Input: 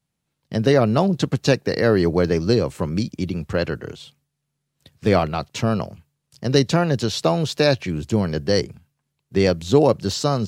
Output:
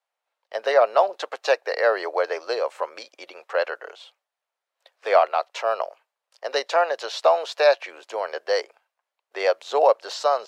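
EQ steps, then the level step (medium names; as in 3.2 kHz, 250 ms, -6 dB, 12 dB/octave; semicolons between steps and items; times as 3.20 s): steep high-pass 570 Hz 36 dB/octave; low-pass 1.1 kHz 6 dB/octave; +6.5 dB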